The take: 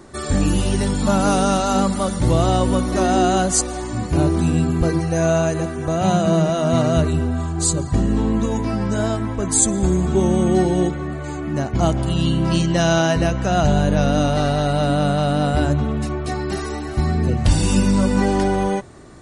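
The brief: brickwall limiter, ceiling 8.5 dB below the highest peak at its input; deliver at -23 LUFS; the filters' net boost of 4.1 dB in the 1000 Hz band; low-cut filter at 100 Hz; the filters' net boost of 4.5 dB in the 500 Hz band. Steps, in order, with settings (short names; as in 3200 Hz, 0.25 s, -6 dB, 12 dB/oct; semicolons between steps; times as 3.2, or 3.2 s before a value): HPF 100 Hz; bell 500 Hz +5 dB; bell 1000 Hz +3.5 dB; gain -3 dB; limiter -13.5 dBFS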